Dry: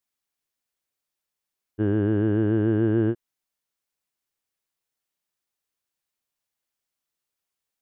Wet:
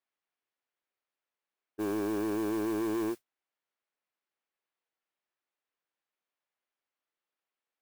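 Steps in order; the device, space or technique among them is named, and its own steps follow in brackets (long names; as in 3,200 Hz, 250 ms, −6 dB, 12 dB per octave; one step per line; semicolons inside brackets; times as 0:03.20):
carbon microphone (band-pass filter 310–2,600 Hz; soft clipping −28.5 dBFS, distortion −10 dB; noise that follows the level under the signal 19 dB)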